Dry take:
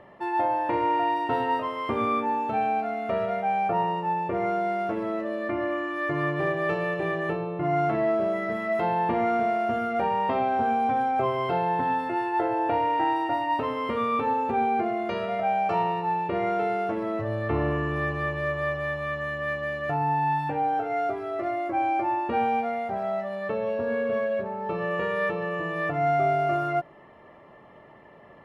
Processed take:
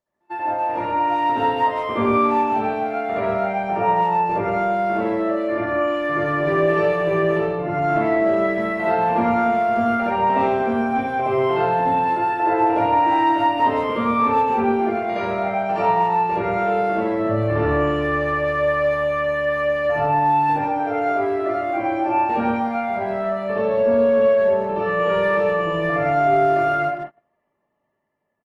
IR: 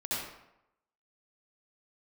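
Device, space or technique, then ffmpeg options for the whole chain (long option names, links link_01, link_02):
speakerphone in a meeting room: -filter_complex "[1:a]atrim=start_sample=2205[link_01];[0:a][link_01]afir=irnorm=-1:irlink=0,asplit=2[link_02][link_03];[link_03]adelay=150,highpass=300,lowpass=3400,asoftclip=type=hard:threshold=-17.5dB,volume=-14dB[link_04];[link_02][link_04]amix=inputs=2:normalize=0,dynaudnorm=framelen=520:gausssize=5:maxgain=5.5dB,agate=range=-29dB:threshold=-27dB:ratio=16:detection=peak,volume=-3.5dB" -ar 48000 -c:a libopus -b:a 32k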